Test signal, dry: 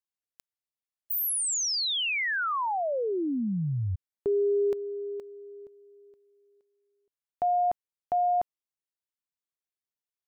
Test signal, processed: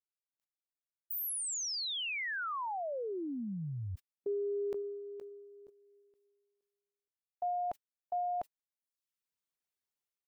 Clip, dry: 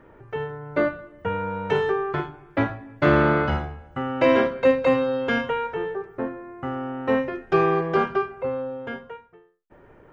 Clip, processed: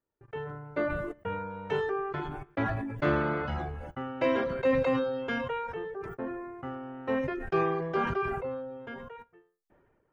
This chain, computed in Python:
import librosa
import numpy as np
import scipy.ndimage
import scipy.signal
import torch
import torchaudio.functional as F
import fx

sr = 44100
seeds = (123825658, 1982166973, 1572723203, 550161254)

y = fx.gate_hold(x, sr, open_db=-38.0, close_db=-43.0, hold_ms=21.0, range_db=-30, attack_ms=4.6, release_ms=24.0)
y = fx.dereverb_blind(y, sr, rt60_s=0.51)
y = fx.sustainer(y, sr, db_per_s=32.0)
y = F.gain(torch.from_numpy(y), -8.5).numpy()